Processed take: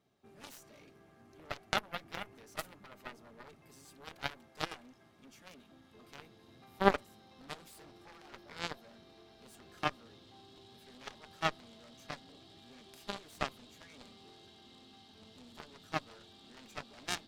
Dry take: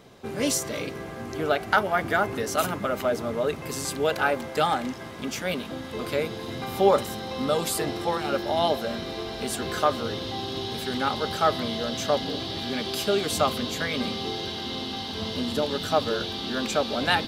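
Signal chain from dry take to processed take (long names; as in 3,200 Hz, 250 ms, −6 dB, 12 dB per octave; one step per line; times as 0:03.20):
notch comb filter 500 Hz
harmonic generator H 3 −9 dB, 4 −33 dB, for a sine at −7 dBFS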